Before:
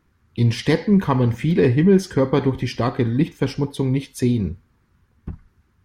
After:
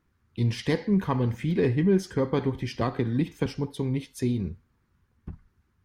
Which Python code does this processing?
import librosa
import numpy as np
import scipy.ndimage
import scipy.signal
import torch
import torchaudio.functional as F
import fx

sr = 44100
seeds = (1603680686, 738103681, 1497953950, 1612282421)

y = fx.band_squash(x, sr, depth_pct=100, at=(2.81, 3.46))
y = F.gain(torch.from_numpy(y), -7.5).numpy()